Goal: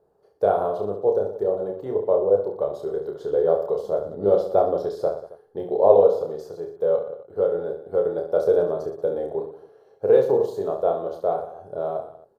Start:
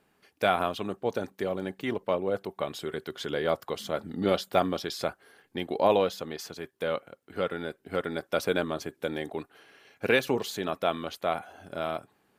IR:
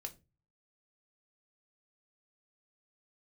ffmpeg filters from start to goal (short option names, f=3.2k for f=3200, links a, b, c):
-af "firequalizer=gain_entry='entry(110,0);entry(260,-11);entry(430,10);entry(650,3);entry(2300,-29);entry(4100,-16)':delay=0.05:min_phase=1,aecho=1:1:30|69|119.7|185.6|271.3:0.631|0.398|0.251|0.158|0.1,volume=1dB"